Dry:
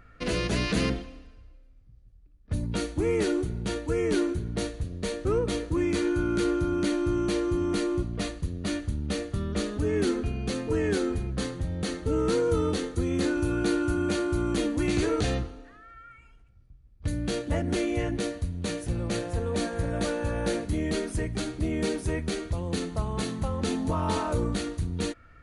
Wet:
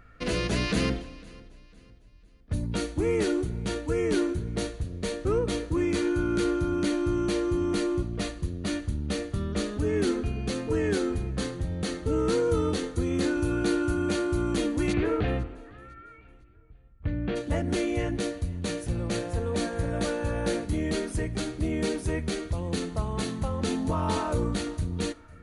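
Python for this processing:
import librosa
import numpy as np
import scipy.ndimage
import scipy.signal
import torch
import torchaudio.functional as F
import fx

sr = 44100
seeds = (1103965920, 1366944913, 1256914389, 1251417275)

p1 = fx.lowpass(x, sr, hz=2800.0, slope=24, at=(14.92, 17.35), fade=0.02)
y = p1 + fx.echo_feedback(p1, sr, ms=503, feedback_pct=38, wet_db=-22.5, dry=0)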